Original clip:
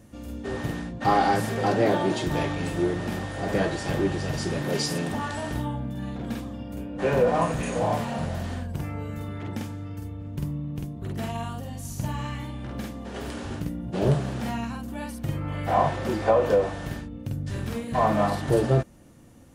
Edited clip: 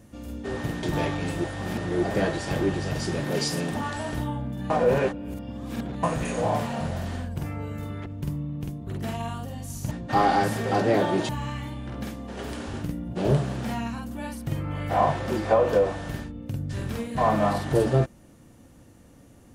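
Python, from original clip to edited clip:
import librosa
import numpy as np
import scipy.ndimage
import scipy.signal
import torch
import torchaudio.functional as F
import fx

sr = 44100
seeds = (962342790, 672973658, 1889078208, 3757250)

y = fx.edit(x, sr, fx.move(start_s=0.83, length_s=1.38, to_s=12.06),
    fx.reverse_span(start_s=2.82, length_s=0.59),
    fx.reverse_span(start_s=6.08, length_s=1.33),
    fx.cut(start_s=9.44, length_s=0.77), tone=tone)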